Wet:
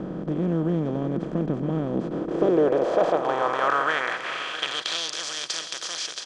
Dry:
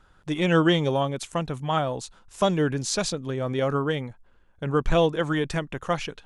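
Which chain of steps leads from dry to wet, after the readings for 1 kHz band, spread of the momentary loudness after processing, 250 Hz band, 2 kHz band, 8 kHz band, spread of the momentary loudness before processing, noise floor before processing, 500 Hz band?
+2.0 dB, 8 LU, 0.0 dB, +2.5 dB, +1.0 dB, 10 LU, -58 dBFS, +0.5 dB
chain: per-bin compression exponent 0.2; AGC; band-pass sweep 210 Hz -> 5100 Hz, 1.9–5.14; echo 0.663 s -13.5 dB

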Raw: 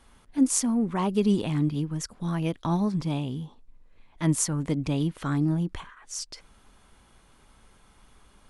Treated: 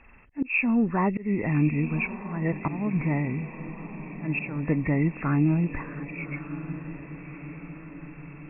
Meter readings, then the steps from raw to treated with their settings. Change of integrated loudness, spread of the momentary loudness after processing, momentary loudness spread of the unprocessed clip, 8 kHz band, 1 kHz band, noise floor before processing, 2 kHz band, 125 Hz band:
0.0 dB, 17 LU, 12 LU, under -40 dB, +1.5 dB, -59 dBFS, +12.0 dB, +1.5 dB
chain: nonlinear frequency compression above 1700 Hz 4:1; auto swell 0.294 s; on a send: diffused feedback echo 1.196 s, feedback 57%, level -12 dB; on the sum: gain +2.5 dB

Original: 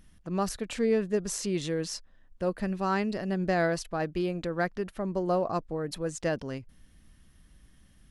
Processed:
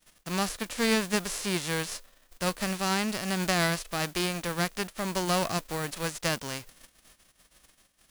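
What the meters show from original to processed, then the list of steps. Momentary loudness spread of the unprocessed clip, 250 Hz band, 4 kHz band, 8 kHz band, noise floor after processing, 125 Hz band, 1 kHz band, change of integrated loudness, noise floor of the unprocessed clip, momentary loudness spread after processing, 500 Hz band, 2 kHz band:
7 LU, -0.5 dB, +10.0 dB, +6.5 dB, -67 dBFS, +0.5 dB, +1.5 dB, +1.0 dB, -59 dBFS, 7 LU, -3.5 dB, +5.5 dB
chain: spectral whitening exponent 0.3; expander -48 dBFS

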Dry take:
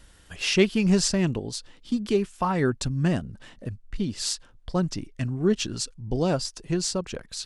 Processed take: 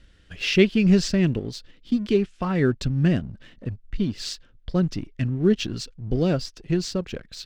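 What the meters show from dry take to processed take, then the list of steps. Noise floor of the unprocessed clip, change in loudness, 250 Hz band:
-54 dBFS, +2.5 dB, +3.5 dB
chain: LPF 3800 Hz 12 dB/oct; bell 910 Hz -12.5 dB 0.94 oct; in parallel at -4 dB: crossover distortion -45 dBFS

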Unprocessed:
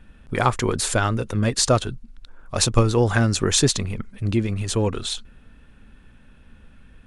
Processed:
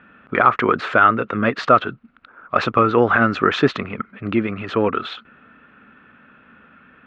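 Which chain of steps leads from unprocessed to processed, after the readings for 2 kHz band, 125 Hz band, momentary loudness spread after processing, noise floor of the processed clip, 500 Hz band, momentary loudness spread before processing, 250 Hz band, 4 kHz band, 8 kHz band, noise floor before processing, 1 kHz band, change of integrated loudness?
+9.0 dB, -7.0 dB, 13 LU, -53 dBFS, +4.0 dB, 11 LU, +3.0 dB, -6.0 dB, under -25 dB, -51 dBFS, +10.0 dB, +3.5 dB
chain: speaker cabinet 270–2600 Hz, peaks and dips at 360 Hz -3 dB, 510 Hz -3 dB, 880 Hz -4 dB, 1300 Hz +10 dB; maximiser +9 dB; gain -1 dB

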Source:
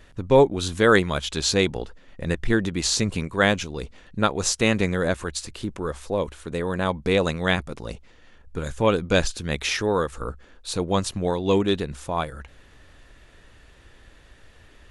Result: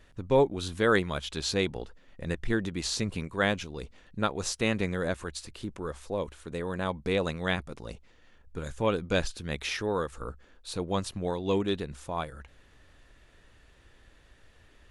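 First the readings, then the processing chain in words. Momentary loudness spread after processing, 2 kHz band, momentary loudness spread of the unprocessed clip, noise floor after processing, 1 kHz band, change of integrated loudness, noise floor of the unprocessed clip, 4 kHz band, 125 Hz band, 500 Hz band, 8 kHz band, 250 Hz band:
16 LU, -7.0 dB, 16 LU, -59 dBFS, -7.0 dB, -7.0 dB, -52 dBFS, -7.5 dB, -7.0 dB, -7.0 dB, -10.0 dB, -7.0 dB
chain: dynamic EQ 6900 Hz, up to -4 dB, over -43 dBFS, Q 1.9; gain -7 dB

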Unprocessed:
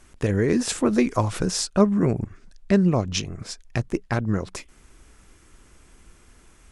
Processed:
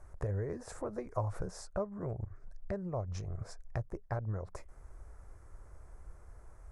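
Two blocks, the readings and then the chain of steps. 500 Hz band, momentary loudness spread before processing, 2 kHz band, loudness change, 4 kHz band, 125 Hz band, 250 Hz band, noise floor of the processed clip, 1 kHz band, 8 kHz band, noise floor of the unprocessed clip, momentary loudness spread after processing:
-14.5 dB, 13 LU, -19.5 dB, -16.5 dB, -26.0 dB, -12.0 dB, -22.5 dB, -55 dBFS, -13.5 dB, -23.0 dB, -54 dBFS, 20 LU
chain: bell 2900 Hz -14.5 dB 0.97 oct; compressor 2.5:1, threshold -35 dBFS, peak gain reduction 15.5 dB; EQ curve 100 Hz 0 dB, 250 Hz -17 dB, 580 Hz 0 dB, 2000 Hz -8 dB, 3400 Hz -16 dB; gain +2 dB

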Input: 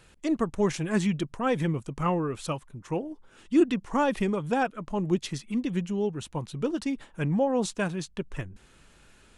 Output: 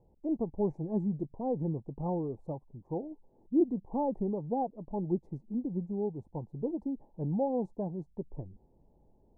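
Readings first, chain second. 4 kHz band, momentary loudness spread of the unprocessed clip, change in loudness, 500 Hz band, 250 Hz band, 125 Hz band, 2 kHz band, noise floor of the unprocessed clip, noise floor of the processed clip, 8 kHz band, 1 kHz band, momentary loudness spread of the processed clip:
under -40 dB, 10 LU, -6.0 dB, -5.5 dB, -5.5 dB, -5.5 dB, under -40 dB, -58 dBFS, -66 dBFS, under -40 dB, -7.5 dB, 11 LU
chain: elliptic low-pass 860 Hz, stop band 40 dB; gain -5 dB

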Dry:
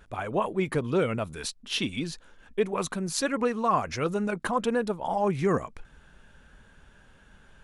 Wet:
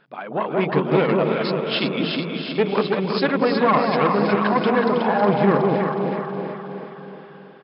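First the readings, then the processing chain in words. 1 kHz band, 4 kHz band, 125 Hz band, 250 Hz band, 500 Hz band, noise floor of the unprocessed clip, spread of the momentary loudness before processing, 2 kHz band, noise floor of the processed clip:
+8.5 dB, +7.0 dB, +8.0 dB, +9.5 dB, +9.0 dB, -57 dBFS, 8 LU, +9.0 dB, -42 dBFS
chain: notches 60/120/180/240/300/360/420 Hz; on a send: echo with dull and thin repeats by turns 0.184 s, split 850 Hz, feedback 71%, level -2 dB; on the sum: AGC gain up to 6 dB; tube stage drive 13 dB, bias 0.65; air absorption 62 m; FFT band-pass 130–5300 Hz; feedback echo 0.321 s, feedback 52%, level -7.5 dB; gain +4 dB

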